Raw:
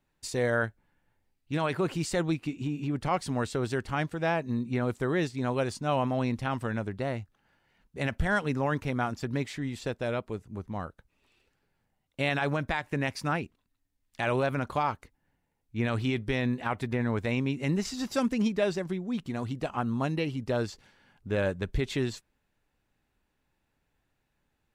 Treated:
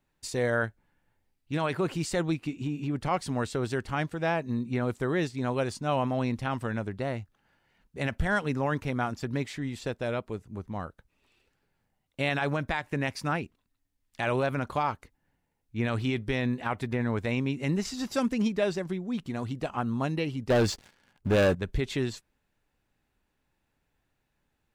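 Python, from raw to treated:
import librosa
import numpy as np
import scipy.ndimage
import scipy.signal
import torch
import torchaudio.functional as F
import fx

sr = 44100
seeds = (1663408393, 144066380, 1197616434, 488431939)

y = fx.leveller(x, sr, passes=3, at=(20.5, 21.55))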